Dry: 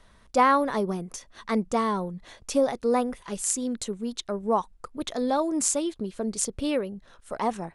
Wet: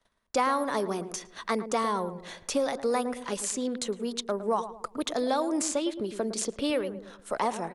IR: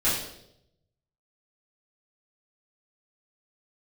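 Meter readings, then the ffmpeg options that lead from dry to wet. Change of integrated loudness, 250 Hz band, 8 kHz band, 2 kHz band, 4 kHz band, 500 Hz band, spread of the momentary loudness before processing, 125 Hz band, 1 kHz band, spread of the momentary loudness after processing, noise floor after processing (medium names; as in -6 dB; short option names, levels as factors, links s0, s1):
-3.0 dB, -3.5 dB, -4.5 dB, -1.5 dB, +1.5 dB, -1.5 dB, 13 LU, -5.5 dB, -3.5 dB, 9 LU, -59 dBFS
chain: -filter_complex "[0:a]agate=range=0.0708:threshold=0.00251:ratio=16:detection=peak,lowshelf=f=160:g=-11.5,acrossover=split=250|1300|5000[s0][s1][s2][s3];[s0]acompressor=threshold=0.00447:ratio=4[s4];[s1]acompressor=threshold=0.0251:ratio=4[s5];[s2]acompressor=threshold=0.01:ratio=4[s6];[s3]acompressor=threshold=0.00794:ratio=4[s7];[s4][s5][s6][s7]amix=inputs=4:normalize=0,asplit=2[s8][s9];[s9]adelay=110,lowpass=f=940:p=1,volume=0.316,asplit=2[s10][s11];[s11]adelay=110,lowpass=f=940:p=1,volume=0.45,asplit=2[s12][s13];[s13]adelay=110,lowpass=f=940:p=1,volume=0.45,asplit=2[s14][s15];[s15]adelay=110,lowpass=f=940:p=1,volume=0.45,asplit=2[s16][s17];[s17]adelay=110,lowpass=f=940:p=1,volume=0.45[s18];[s10][s12][s14][s16][s18]amix=inputs=5:normalize=0[s19];[s8][s19]amix=inputs=2:normalize=0,volume=1.78"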